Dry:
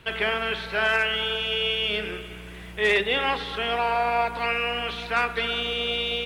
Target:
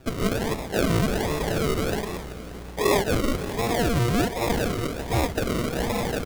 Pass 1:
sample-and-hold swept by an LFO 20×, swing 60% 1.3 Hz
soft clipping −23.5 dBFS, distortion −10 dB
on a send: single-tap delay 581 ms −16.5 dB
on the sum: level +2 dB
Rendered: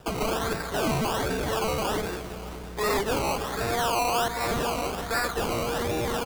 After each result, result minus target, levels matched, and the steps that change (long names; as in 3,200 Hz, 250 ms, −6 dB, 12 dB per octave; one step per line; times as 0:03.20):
sample-and-hold swept by an LFO: distortion −13 dB; soft clipping: distortion +11 dB
change: sample-and-hold swept by an LFO 41×, swing 60% 1.3 Hz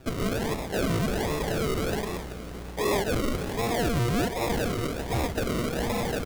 soft clipping: distortion +11 dB
change: soft clipping −14 dBFS, distortion −21 dB